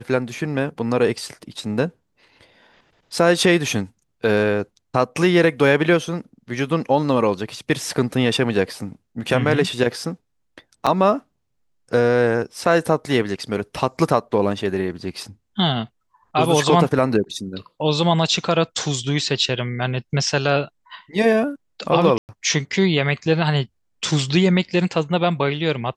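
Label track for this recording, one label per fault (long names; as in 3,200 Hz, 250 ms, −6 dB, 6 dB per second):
10.860000	10.870000	drop-out 6.4 ms
22.180000	22.290000	drop-out 109 ms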